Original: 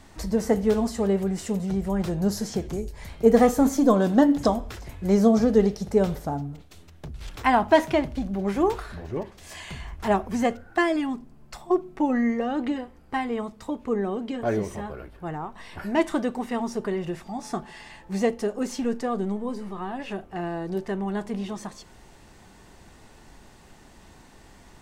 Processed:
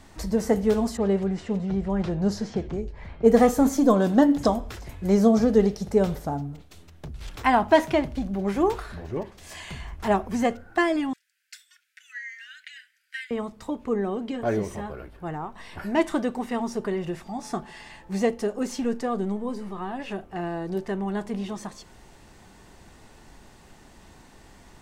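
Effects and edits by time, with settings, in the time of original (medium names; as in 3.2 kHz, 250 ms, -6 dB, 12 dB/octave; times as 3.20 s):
0.97–3.41 s: level-controlled noise filter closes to 1.8 kHz, open at -14.5 dBFS
11.13–13.31 s: steep high-pass 1.5 kHz 96 dB/octave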